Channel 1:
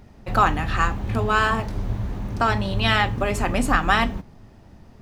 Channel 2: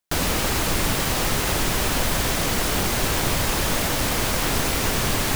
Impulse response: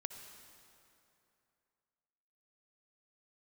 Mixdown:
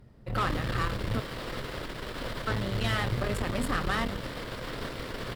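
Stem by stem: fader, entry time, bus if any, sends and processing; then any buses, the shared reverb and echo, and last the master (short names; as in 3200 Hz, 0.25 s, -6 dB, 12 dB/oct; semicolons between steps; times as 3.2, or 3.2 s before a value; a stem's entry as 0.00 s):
-4.0 dB, 0.00 s, muted 1.2–2.47, no send, dry
-8.0 dB, 0.25 s, no send, three-band isolator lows -12 dB, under 210 Hz, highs -17 dB, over 5100 Hz; low shelf 91 Hz +12 dB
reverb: off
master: tube stage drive 23 dB, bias 0.75; thirty-one-band EQ 125 Hz +8 dB, 500 Hz +4 dB, 800 Hz -7 dB, 2500 Hz -5 dB, 6300 Hz -9 dB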